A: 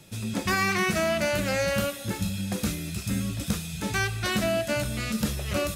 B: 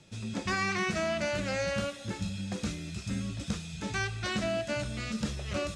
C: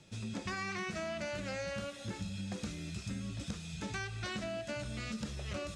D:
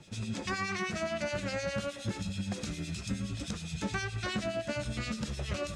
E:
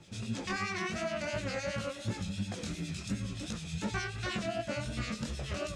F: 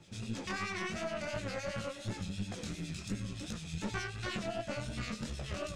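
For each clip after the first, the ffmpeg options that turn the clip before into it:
-af "lowpass=f=7700:w=0.5412,lowpass=f=7700:w=1.3066,volume=0.531"
-af "acompressor=threshold=0.02:ratio=6,volume=0.794"
-filter_complex "[0:a]acrossover=split=2100[s0][s1];[s0]aeval=exprs='val(0)*(1-0.7/2+0.7/2*cos(2*PI*9.6*n/s))':c=same[s2];[s1]aeval=exprs='val(0)*(1-0.7/2-0.7/2*cos(2*PI*9.6*n/s))':c=same[s3];[s2][s3]amix=inputs=2:normalize=0,volume=2.51"
-af "flanger=delay=17:depth=7.8:speed=2.8,volume=1.26"
-af "aeval=exprs='(tanh(20*val(0)+0.55)-tanh(0.55))/20':c=same"

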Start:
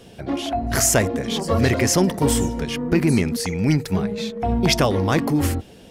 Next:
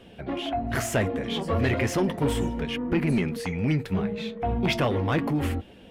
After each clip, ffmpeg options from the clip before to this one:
-af "flanger=delay=3.1:depth=9.1:regen=-55:speed=0.35:shape=triangular,asoftclip=type=tanh:threshold=0.158,highshelf=f=4000:t=q:w=1.5:g=-9"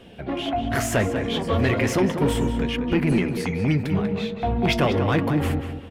-filter_complex "[0:a]asplit=2[s0][s1];[s1]adelay=191,lowpass=f=3400:p=1,volume=0.422,asplit=2[s2][s3];[s3]adelay=191,lowpass=f=3400:p=1,volume=0.33,asplit=2[s4][s5];[s5]adelay=191,lowpass=f=3400:p=1,volume=0.33,asplit=2[s6][s7];[s7]adelay=191,lowpass=f=3400:p=1,volume=0.33[s8];[s0][s2][s4][s6][s8]amix=inputs=5:normalize=0,volume=1.41"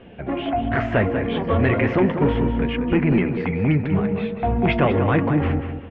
-af "lowpass=f=2600:w=0.5412,lowpass=f=2600:w=1.3066,volume=1.33"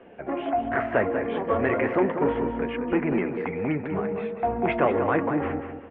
-filter_complex "[0:a]acrossover=split=280 2300:gain=0.178 1 0.1[s0][s1][s2];[s0][s1][s2]amix=inputs=3:normalize=0,volume=0.891"

